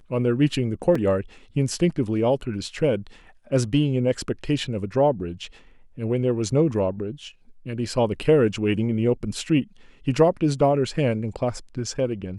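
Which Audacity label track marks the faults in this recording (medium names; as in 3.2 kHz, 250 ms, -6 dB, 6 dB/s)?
0.950000	0.950000	dropout 3.8 ms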